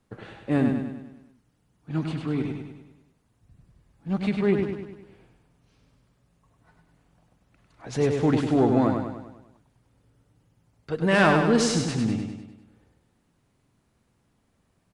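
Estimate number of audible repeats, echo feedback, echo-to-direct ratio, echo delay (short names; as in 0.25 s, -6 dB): 6, 52%, -3.5 dB, 0.1 s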